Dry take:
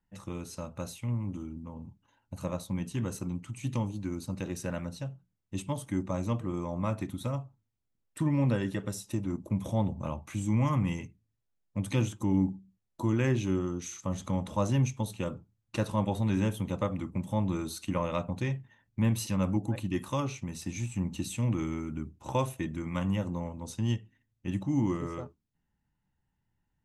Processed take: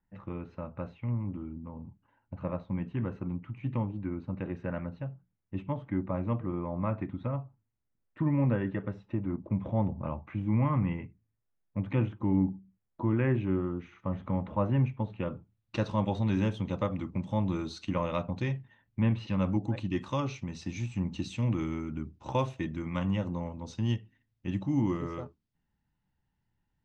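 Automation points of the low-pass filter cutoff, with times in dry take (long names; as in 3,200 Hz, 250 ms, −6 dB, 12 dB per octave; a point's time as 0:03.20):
low-pass filter 24 dB per octave
0:15.09 2,300 Hz
0:15.79 5,300 Hz
0:18.58 5,300 Hz
0:19.19 2,900 Hz
0:19.49 5,400 Hz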